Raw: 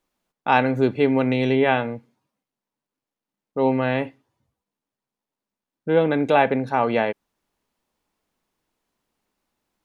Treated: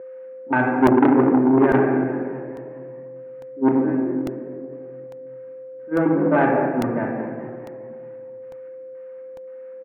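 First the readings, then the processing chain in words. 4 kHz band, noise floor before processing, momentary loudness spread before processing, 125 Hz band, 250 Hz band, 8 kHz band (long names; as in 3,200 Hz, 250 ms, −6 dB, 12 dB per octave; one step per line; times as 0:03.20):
below −10 dB, below −85 dBFS, 14 LU, 0.0 dB, +6.0 dB, can't be measured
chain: spike at every zero crossing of −16 dBFS
noise gate −17 dBFS, range −24 dB
low-shelf EQ 400 Hz +10.5 dB
in parallel at −2 dB: downward compressor, threshold −23 dBFS, peak gain reduction 14.5 dB
on the sum: hard clipping −4.5 dBFS, distortion −19 dB
auto-filter low-pass square 1.9 Hz 290–1,600 Hz
on a send: echo with shifted repeats 209 ms, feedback 55%, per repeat +44 Hz, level −14 dB
on the sum: rectangular room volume 1,800 cubic metres, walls mixed, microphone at 2.7 metres
steady tone 520 Hz −26 dBFS
loudspeaker in its box 130–2,300 Hz, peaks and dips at 130 Hz +4 dB, 240 Hz +3 dB, 370 Hz +10 dB
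regular buffer underruns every 0.85 s, samples 64, repeat, from 0:00.87
saturating transformer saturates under 690 Hz
level −10 dB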